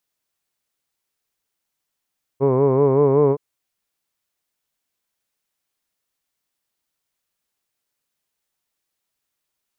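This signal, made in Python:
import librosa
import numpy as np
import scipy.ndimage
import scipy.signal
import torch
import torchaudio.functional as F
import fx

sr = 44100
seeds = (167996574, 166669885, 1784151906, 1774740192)

y = fx.vowel(sr, seeds[0], length_s=0.97, word='hood', hz=132.0, glide_st=1.5, vibrato_hz=5.3, vibrato_st=0.9)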